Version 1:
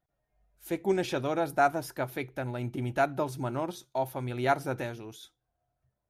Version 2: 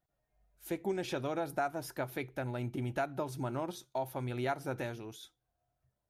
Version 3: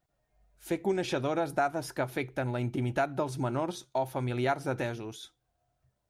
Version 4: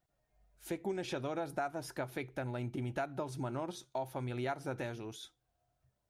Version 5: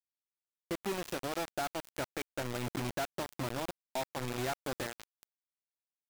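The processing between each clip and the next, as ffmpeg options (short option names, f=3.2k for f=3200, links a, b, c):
-af "acompressor=threshold=-30dB:ratio=3,volume=-2dB"
-af "equalizer=f=13k:t=o:w=0.3:g=-11,volume=5.5dB"
-af "acompressor=threshold=-39dB:ratio=1.5,volume=-3dB"
-af "acrusher=bits=5:mix=0:aa=0.000001"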